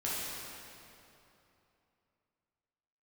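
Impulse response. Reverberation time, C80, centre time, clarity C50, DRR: 3.0 s, -1.5 dB, 0.177 s, -3.5 dB, -8.5 dB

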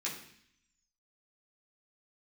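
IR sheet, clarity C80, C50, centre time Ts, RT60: 9.5 dB, 6.5 dB, 32 ms, 0.65 s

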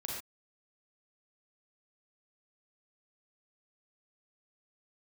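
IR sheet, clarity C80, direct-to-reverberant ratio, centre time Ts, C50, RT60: 3.5 dB, -3.0 dB, 54 ms, 0.0 dB, not exponential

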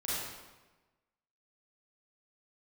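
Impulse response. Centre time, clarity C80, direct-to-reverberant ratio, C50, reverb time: 0.108 s, -1.0 dB, -9.5 dB, -4.5 dB, 1.2 s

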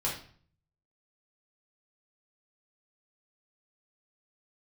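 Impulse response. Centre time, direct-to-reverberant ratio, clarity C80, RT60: 31 ms, -5.0 dB, 11.0 dB, 0.50 s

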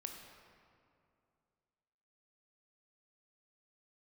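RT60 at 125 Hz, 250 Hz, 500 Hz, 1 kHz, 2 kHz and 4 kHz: 2.8, 2.7, 2.6, 2.4, 1.9, 1.4 s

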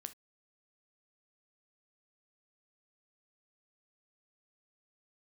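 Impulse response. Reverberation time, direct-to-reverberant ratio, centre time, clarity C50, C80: not exponential, 10.0 dB, 4 ms, 16.5 dB, 31.5 dB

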